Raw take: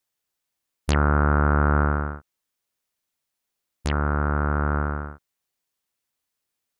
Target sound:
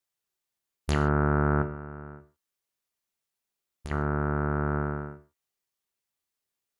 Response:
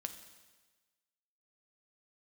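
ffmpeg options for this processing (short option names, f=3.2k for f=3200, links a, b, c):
-filter_complex "[0:a]asettb=1/sr,asplit=3[a][b][c];[a]atrim=end=1.624[d];[b]atrim=start=1.62:end=3.91,asetpts=PTS-STARTPTS,afade=t=in:d=0.004:c=qsin,afade=t=out:st=2.286:d=0.004:c=qsin,acompressor=threshold=-31dB:ratio=12[e];[c]atrim=start=3.906[f];[d][e]acrossfade=d=0.004:c1=hsin:c2=qsin[g];[g][f]acrossfade=d=0.004:c1=qsin:c2=hsin[h];[1:a]atrim=start_sample=2205,afade=t=out:st=0.37:d=0.01,atrim=end_sample=16758,asetrate=88200,aresample=44100[i];[h][i]afir=irnorm=-1:irlink=0,volume=3.5dB"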